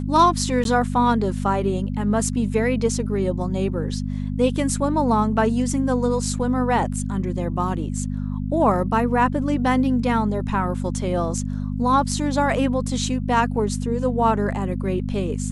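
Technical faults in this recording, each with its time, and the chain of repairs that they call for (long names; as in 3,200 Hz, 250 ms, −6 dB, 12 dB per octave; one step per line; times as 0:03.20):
mains hum 50 Hz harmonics 5 −26 dBFS
0:00.64–0:00.65: drop-out 12 ms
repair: hum removal 50 Hz, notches 5
repair the gap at 0:00.64, 12 ms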